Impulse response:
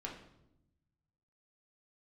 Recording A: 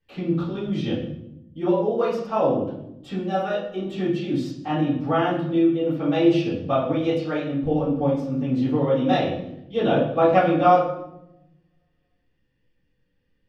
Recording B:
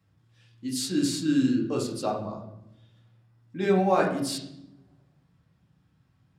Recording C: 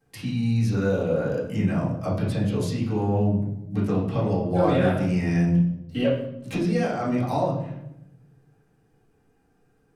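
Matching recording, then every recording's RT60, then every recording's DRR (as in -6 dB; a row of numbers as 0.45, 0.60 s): B; 0.85, 0.85, 0.85 s; -15.5, -2.5, -10.0 dB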